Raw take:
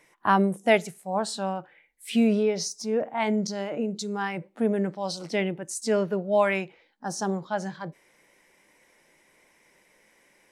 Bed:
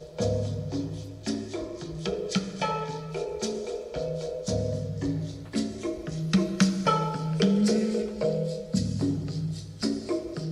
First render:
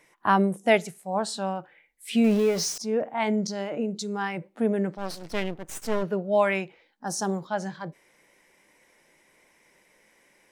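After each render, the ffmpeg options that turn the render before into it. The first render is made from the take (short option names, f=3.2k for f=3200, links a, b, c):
-filter_complex "[0:a]asettb=1/sr,asplit=3[a][b][c];[a]atrim=end=2.244[d];[b]atrim=start=2.24:end=2.78,asetpts=PTS-STARTPTS,afade=t=in:d=0.004:c=qsin,afade=t=out:st=0.536:d=0.004:c=qsin,aeval=exprs='val(0)+0.5*0.0282*sgn(val(0))':c=same[e];[c]atrim=start=2.776[f];[d][e]acrossfade=d=0.004:c1=hsin:c2=qsin[g];[g][f]acrossfade=d=0.004:c1=qsin:c2=hsin,asplit=3[h][i][j];[h]afade=t=out:st=4.97:d=0.02[k];[i]aeval=exprs='max(val(0),0)':c=same,afade=t=in:st=4.97:d=0.02,afade=t=out:st=6.02:d=0.02[l];[j]afade=t=in:st=6.02:d=0.02[m];[k][l][m]amix=inputs=3:normalize=0,asettb=1/sr,asplit=3[n][o][p];[n]atrim=end=7.074[q];[o]atrim=start=7.07:end=7.47,asetpts=PTS-STARTPTS,afade=t=in:d=0.004:c=qsin,afade=t=out:st=0.396:d=0.004:c=qsin,highshelf=f=9.5k:g=12[r];[p]atrim=start=7.466[s];[q][r]acrossfade=d=0.004:c1=hsin:c2=qsin[t];[t][s]acrossfade=d=0.004:c1=qsin:c2=hsin"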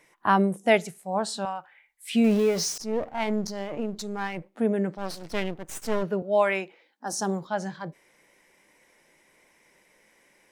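-filter_complex "[0:a]asettb=1/sr,asplit=3[a][b][c];[a]atrim=end=1.454[d];[b]atrim=start=1.45:end=2.15,asetpts=PTS-STARTPTS,afade=t=in:d=0.004:c=qsin,afade=t=out:st=0.696:d=0.004:c=qsin,lowshelf=f=610:t=q:w=1.5:g=-12[e];[c]atrim=start=2.146[f];[d][e]acrossfade=d=0.004:c1=hsin:c2=qsin[g];[g][f]acrossfade=d=0.004:c1=qsin:c2=hsin,asettb=1/sr,asplit=3[h][i][j];[h]atrim=end=2.804[k];[i]atrim=start=2.8:end=4.55,asetpts=PTS-STARTPTS,afade=t=in:d=0.004:c=qsin,afade=t=out:st=1.746:d=0.004:c=qsin,aeval=exprs='if(lt(val(0),0),0.447*val(0),val(0))':c=same[l];[j]atrim=start=4.546[m];[k][l]acrossfade=d=0.004:c1=hsin:c2=qsin[n];[n][m]acrossfade=d=0.004:c1=qsin:c2=hsin,asettb=1/sr,asplit=3[o][p][q];[o]atrim=end=6.224[r];[p]atrim=start=6.22:end=7.13,asetpts=PTS-STARTPTS,afade=t=in:d=0.004:c=qsin,afade=t=out:st=0.906:d=0.004:c=qsin,highpass=f=220:w=0.5412,highpass=f=220:w=1.3066[s];[q]atrim=start=7.126[t];[r][s]acrossfade=d=0.004:c1=hsin:c2=qsin[u];[u][t]acrossfade=d=0.004:c1=qsin:c2=hsin"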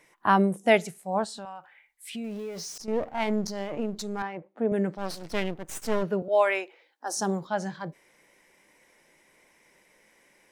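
-filter_complex "[0:a]asettb=1/sr,asplit=3[a][b][c];[a]atrim=end=1.244[d];[b]atrim=start=1.24:end=2.88,asetpts=PTS-STARTPTS,afade=t=in:d=0.004:c=qsin,afade=t=out:st=1.636:d=0.004:c=qsin,acompressor=threshold=-40dB:ratio=2.5:attack=3.2:release=140:knee=1:detection=peak[e];[c]atrim=start=2.876[f];[d][e]acrossfade=d=0.004:c1=hsin:c2=qsin[g];[g][f]acrossfade=d=0.004:c1=qsin:c2=hsin,asettb=1/sr,asplit=3[h][i][j];[h]atrim=end=4.224[k];[i]atrim=start=4.22:end=4.72,asetpts=PTS-STARTPTS,afade=t=in:d=0.004:c=qsin,afade=t=out:st=0.496:d=0.004:c=qsin,bandpass=f=580:t=q:w=0.59[l];[j]atrim=start=4.716[m];[k][l]acrossfade=d=0.004:c1=hsin:c2=qsin[n];[n][m]acrossfade=d=0.004:c1=qsin:c2=hsin,asettb=1/sr,asplit=3[o][p][q];[o]atrim=end=6.284[r];[p]atrim=start=6.28:end=7.17,asetpts=PTS-STARTPTS,afade=t=in:d=0.004:c=qsin,afade=t=out:st=0.886:d=0.004:c=qsin,highpass=f=340:w=0.5412,highpass=f=340:w=1.3066[s];[q]atrim=start=7.166[t];[r][s]acrossfade=d=0.004:c1=hsin:c2=qsin[u];[u][t]acrossfade=d=0.004:c1=qsin:c2=hsin"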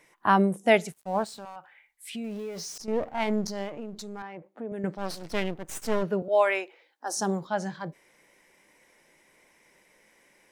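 -filter_complex "[0:a]asettb=1/sr,asplit=3[a][b][c];[a]atrim=end=0.924[d];[b]atrim=start=0.92:end=1.56,asetpts=PTS-STARTPTS,afade=t=in:d=0.004:c=qsin,afade=t=out:st=0.636:d=0.004:c=qsin,aeval=exprs='sgn(val(0))*max(abs(val(0))-0.00355,0)':c=same[e];[c]atrim=start=1.556[f];[d][e]acrossfade=d=0.004:c1=hsin:c2=qsin[g];[g][f]acrossfade=d=0.004:c1=qsin:c2=hsin,asettb=1/sr,asplit=3[h][i][j];[h]atrim=end=3.694[k];[i]atrim=start=3.69:end=4.84,asetpts=PTS-STARTPTS,afade=t=in:d=0.004:c=qsin,afade=t=out:st=1.146:d=0.004:c=qsin,acompressor=threshold=-39dB:ratio=2:attack=3.2:release=140:knee=1:detection=peak[l];[j]atrim=start=4.836[m];[k][l]acrossfade=d=0.004:c1=hsin:c2=qsin[n];[n][m]acrossfade=d=0.004:c1=qsin:c2=hsin"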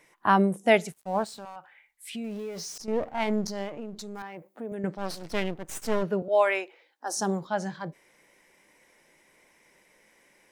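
-filter_complex "[0:a]asettb=1/sr,asplit=3[a][b][c];[a]atrim=end=4.154[d];[b]atrim=start=4.15:end=4.75,asetpts=PTS-STARTPTS,afade=t=in:d=0.004:c=qsin,afade=t=out:st=0.596:d=0.004:c=qsin,aemphasis=mode=production:type=50fm[e];[c]atrim=start=4.746[f];[d][e]acrossfade=d=0.004:c1=hsin:c2=qsin[g];[g][f]acrossfade=d=0.004:c1=qsin:c2=hsin"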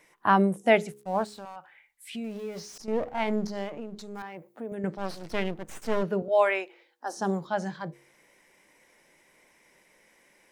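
-filter_complex "[0:a]bandreject=f=69.51:t=h:w=4,bandreject=f=139.02:t=h:w=4,bandreject=f=208.53:t=h:w=4,bandreject=f=278.04:t=h:w=4,bandreject=f=347.55:t=h:w=4,bandreject=f=417.06:t=h:w=4,bandreject=f=486.57:t=h:w=4,acrossover=split=3500[a][b];[b]acompressor=threshold=-45dB:ratio=4:attack=1:release=60[c];[a][c]amix=inputs=2:normalize=0"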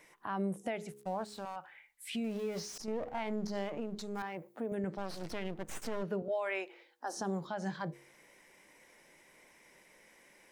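-af "acompressor=threshold=-32dB:ratio=2.5,alimiter=level_in=3dB:limit=-24dB:level=0:latency=1:release=97,volume=-3dB"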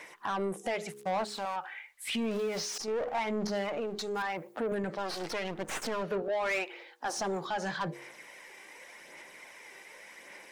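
-filter_complex "[0:a]aphaser=in_gain=1:out_gain=1:delay=2.6:decay=0.33:speed=0.87:type=sinusoidal,asplit=2[a][b];[b]highpass=f=720:p=1,volume=18dB,asoftclip=type=tanh:threshold=-23.5dB[c];[a][c]amix=inputs=2:normalize=0,lowpass=f=5.1k:p=1,volume=-6dB"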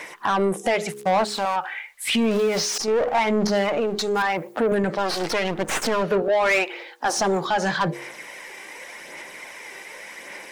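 -af "volume=11.5dB"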